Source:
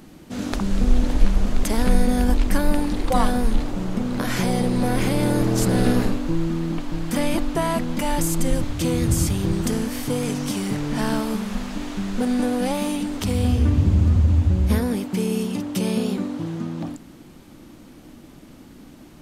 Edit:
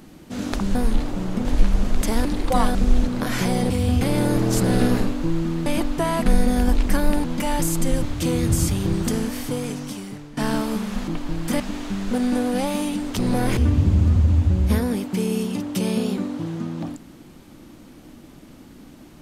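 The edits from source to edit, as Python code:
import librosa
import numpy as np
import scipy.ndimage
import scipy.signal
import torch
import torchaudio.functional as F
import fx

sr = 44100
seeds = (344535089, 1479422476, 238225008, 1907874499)

y = fx.edit(x, sr, fx.swap(start_s=0.75, length_s=0.32, other_s=3.35, other_length_s=0.7),
    fx.move(start_s=1.87, length_s=0.98, to_s=7.83),
    fx.swap(start_s=4.68, length_s=0.38, other_s=13.26, other_length_s=0.31),
    fx.move(start_s=6.71, length_s=0.52, to_s=11.67),
    fx.fade_out_to(start_s=9.84, length_s=1.12, floor_db=-18.5), tone=tone)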